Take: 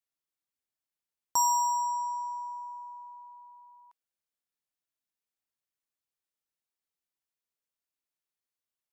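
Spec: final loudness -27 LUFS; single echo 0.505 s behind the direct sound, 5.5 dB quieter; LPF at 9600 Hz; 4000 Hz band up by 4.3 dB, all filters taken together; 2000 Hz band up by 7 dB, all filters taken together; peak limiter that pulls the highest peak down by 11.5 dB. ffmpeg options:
-af "lowpass=9.6k,equalizer=f=2k:t=o:g=8.5,equalizer=f=4k:t=o:g=8,alimiter=level_in=2.5dB:limit=-24dB:level=0:latency=1,volume=-2.5dB,aecho=1:1:505:0.531,volume=7dB"

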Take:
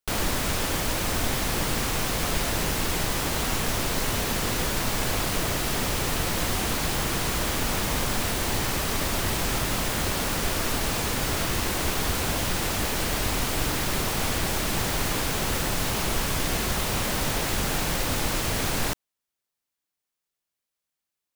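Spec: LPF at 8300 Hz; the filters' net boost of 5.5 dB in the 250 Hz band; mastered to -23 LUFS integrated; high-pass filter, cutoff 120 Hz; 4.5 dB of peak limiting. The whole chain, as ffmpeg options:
-af "highpass=120,lowpass=8.3k,equalizer=f=250:t=o:g=7.5,volume=4.5dB,alimiter=limit=-13.5dB:level=0:latency=1"

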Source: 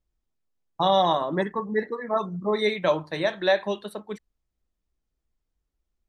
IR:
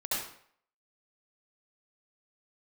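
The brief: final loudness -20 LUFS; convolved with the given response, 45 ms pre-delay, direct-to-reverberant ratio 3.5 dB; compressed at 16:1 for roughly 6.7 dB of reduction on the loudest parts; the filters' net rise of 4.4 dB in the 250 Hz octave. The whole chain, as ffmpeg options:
-filter_complex "[0:a]equalizer=f=250:t=o:g=6.5,acompressor=threshold=-21dB:ratio=16,asplit=2[a][b];[1:a]atrim=start_sample=2205,adelay=45[c];[b][c]afir=irnorm=-1:irlink=0,volume=-9.5dB[d];[a][d]amix=inputs=2:normalize=0,volume=6.5dB"

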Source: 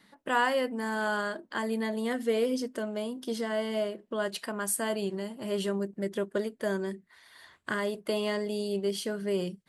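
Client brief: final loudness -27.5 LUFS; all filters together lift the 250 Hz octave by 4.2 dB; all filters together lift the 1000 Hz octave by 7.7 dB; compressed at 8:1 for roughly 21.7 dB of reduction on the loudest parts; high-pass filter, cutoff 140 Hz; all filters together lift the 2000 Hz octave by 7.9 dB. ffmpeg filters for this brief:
-af "highpass=140,equalizer=f=250:t=o:g=5.5,equalizer=f=1k:t=o:g=7,equalizer=f=2k:t=o:g=7.5,acompressor=threshold=-37dB:ratio=8,volume=13.5dB"

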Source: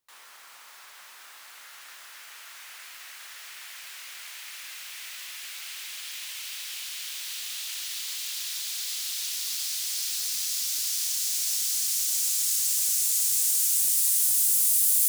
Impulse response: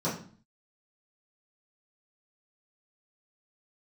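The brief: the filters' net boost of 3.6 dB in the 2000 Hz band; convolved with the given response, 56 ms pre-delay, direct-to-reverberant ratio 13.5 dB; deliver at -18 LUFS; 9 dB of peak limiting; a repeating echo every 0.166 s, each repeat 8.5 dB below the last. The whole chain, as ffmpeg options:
-filter_complex "[0:a]equalizer=f=2k:t=o:g=4.5,alimiter=limit=-18dB:level=0:latency=1,aecho=1:1:166|332|498|664:0.376|0.143|0.0543|0.0206,asplit=2[a][b];[1:a]atrim=start_sample=2205,adelay=56[c];[b][c]afir=irnorm=-1:irlink=0,volume=-22.5dB[d];[a][d]amix=inputs=2:normalize=0,volume=9dB"

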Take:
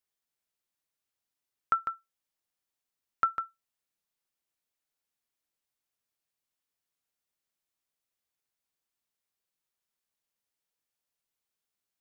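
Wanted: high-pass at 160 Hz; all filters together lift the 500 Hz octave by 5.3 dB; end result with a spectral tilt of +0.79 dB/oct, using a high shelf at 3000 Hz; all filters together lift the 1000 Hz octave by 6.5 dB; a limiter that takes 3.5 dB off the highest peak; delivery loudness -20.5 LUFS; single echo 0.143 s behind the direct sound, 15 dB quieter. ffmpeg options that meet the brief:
-af "highpass=160,equalizer=f=500:t=o:g=3.5,equalizer=f=1k:t=o:g=8.5,highshelf=f=3k:g=7.5,alimiter=limit=-11dB:level=0:latency=1,aecho=1:1:143:0.178,volume=9dB"

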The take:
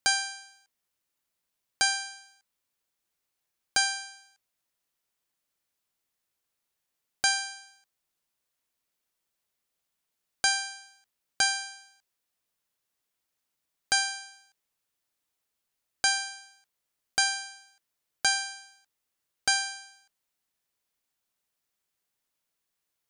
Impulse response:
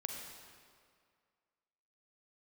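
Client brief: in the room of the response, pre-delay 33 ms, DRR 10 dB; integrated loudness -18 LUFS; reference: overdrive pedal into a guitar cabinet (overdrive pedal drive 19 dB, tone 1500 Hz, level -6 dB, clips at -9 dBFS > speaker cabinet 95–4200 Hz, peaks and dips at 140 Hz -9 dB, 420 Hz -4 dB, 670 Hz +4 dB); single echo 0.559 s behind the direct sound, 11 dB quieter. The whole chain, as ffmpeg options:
-filter_complex "[0:a]aecho=1:1:559:0.282,asplit=2[a][b];[1:a]atrim=start_sample=2205,adelay=33[c];[b][c]afir=irnorm=-1:irlink=0,volume=-10dB[d];[a][d]amix=inputs=2:normalize=0,asplit=2[e][f];[f]highpass=f=720:p=1,volume=19dB,asoftclip=type=tanh:threshold=-9dB[g];[e][g]amix=inputs=2:normalize=0,lowpass=f=1.5k:p=1,volume=-6dB,highpass=95,equalizer=f=140:t=q:w=4:g=-9,equalizer=f=420:t=q:w=4:g=-4,equalizer=f=670:t=q:w=4:g=4,lowpass=f=4.2k:w=0.5412,lowpass=f=4.2k:w=1.3066,volume=9.5dB"

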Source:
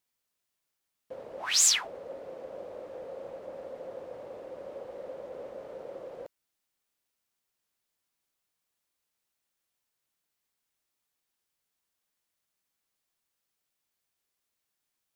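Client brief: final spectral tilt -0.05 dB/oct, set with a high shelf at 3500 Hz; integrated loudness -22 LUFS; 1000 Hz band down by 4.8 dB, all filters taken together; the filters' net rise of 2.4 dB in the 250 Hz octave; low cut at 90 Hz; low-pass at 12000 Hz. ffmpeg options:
-af "highpass=90,lowpass=12k,equalizer=f=250:t=o:g=4,equalizer=f=1k:t=o:g=-6,highshelf=f=3.5k:g=-7.5,volume=15dB"

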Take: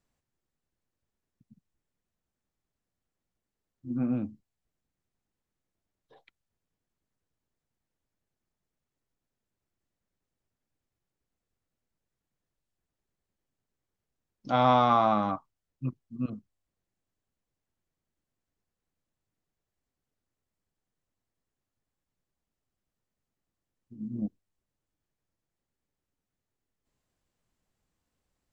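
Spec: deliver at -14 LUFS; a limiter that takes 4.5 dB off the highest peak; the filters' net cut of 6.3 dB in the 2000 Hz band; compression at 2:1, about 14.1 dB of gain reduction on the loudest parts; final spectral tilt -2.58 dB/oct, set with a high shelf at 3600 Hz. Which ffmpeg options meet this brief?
-af "equalizer=f=2k:t=o:g=-7,highshelf=f=3.6k:g=-8,acompressor=threshold=-46dB:ratio=2,volume=30dB,alimiter=limit=-1dB:level=0:latency=1"

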